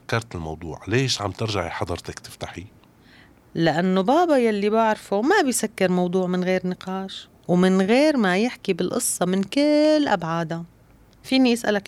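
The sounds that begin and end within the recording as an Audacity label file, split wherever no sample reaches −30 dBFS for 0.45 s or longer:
3.550000	10.620000	sound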